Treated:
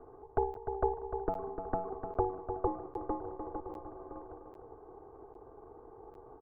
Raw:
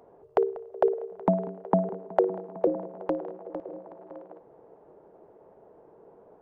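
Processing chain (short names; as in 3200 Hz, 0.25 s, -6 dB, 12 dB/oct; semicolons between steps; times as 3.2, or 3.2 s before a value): minimum comb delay 0.59 ms; ladder low-pass 950 Hz, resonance 55%; comb 2.6 ms, depth 76%; feedback echo 0.3 s, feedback 30%, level -10 dB; crackling interface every 0.80 s, samples 512, zero, from 0.54; three-band squash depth 40%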